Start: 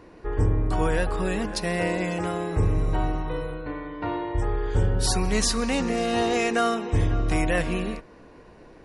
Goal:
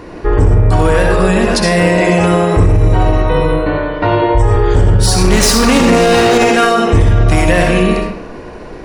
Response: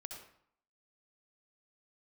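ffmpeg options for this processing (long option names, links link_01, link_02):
-filter_complex "[0:a]asettb=1/sr,asplit=3[link_01][link_02][link_03];[link_01]atrim=end=5.244[link_04];[link_02]atrim=start=5.24:end=6.38,asetpts=PTS-STARTPTS,afade=type=in:duration=0.004:curve=qsin,afade=type=out:start_time=1.136:duration=0.004:curve=qsin,acontrast=77[link_05];[link_03]atrim=start=6.376[link_06];[link_04][link_05]acrossfade=duration=0.004:curve1=hsin:curve2=qsin[link_07];[link_07][link_06]acrossfade=duration=0.004:curve1=qsin:curve2=hsin,asoftclip=type=hard:threshold=-16.5dB,asettb=1/sr,asplit=3[link_08][link_09][link_10];[link_08]atrim=end=3.444[link_11];[link_09]atrim=start=3.44:end=4.49,asetpts=PTS-STARTPTS,afade=type=in:duration=0.004:curve=qsin,afade=type=out:start_time=1.046:duration=0.004:curve=qsin,asplit=2[link_12][link_13];[link_13]adelay=19,volume=-3.5dB[link_14];[link_12][link_14]amix=inputs=2:normalize=0,atrim=end_sample=46305[link_15];[link_10]atrim=start=4.486[link_16];[link_11][link_15]acrossfade=duration=0.004:curve1=hsin:curve2=qsin[link_17];[link_17][link_16]acrossfade=duration=0.004:curve1=qsin:curve2=hsin[link_18];[1:a]atrim=start_sample=2205[link_19];[link_18][link_19]afir=irnorm=-1:irlink=0,alimiter=level_in=23.5dB:limit=-1dB:release=50:level=0:latency=1,volume=-1dB"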